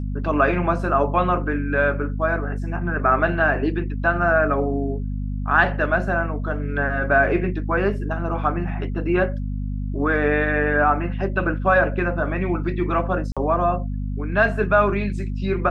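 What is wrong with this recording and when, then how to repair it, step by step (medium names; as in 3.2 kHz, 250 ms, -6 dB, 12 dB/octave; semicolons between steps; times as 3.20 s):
hum 50 Hz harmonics 5 -26 dBFS
13.32–13.37 s: dropout 46 ms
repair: de-hum 50 Hz, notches 5; interpolate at 13.32 s, 46 ms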